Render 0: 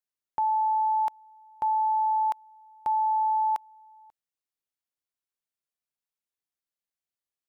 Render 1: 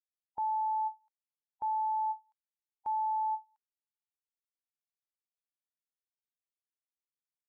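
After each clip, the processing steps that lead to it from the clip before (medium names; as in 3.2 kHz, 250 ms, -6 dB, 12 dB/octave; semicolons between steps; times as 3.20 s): expander on every frequency bin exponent 3; endings held to a fixed fall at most 330 dB/s; trim -6.5 dB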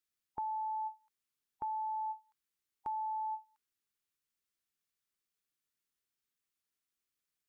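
high-order bell 700 Hz -8 dB 1.1 oct; compression, threshold -42 dBFS, peak gain reduction 4.5 dB; trim +6.5 dB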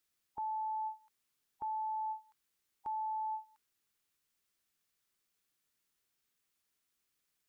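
peak limiter -40.5 dBFS, peak gain reduction 11 dB; trim +6.5 dB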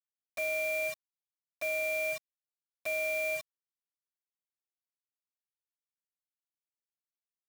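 ring modulator 1.5 kHz; bit crusher 8-bit; trim +8 dB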